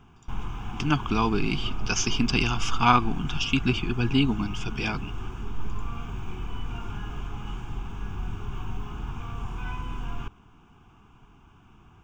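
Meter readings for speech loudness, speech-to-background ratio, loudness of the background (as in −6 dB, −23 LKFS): −26.0 LKFS, 11.0 dB, −37.0 LKFS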